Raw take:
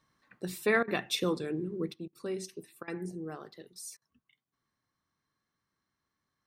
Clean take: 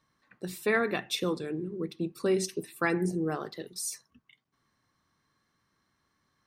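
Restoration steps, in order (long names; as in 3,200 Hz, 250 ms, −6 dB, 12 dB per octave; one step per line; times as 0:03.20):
repair the gap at 0:00.83/0:02.08/0:02.83/0:03.97, 46 ms
level 0 dB, from 0:01.94 +9.5 dB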